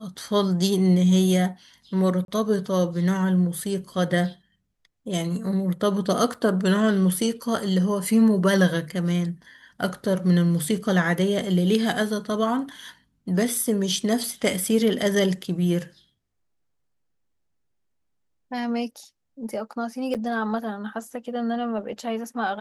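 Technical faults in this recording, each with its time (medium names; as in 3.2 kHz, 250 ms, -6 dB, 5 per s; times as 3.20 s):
2.25–2.28 s: dropout 32 ms
6.34 s: dropout 4.9 ms
20.14–20.15 s: dropout 7.6 ms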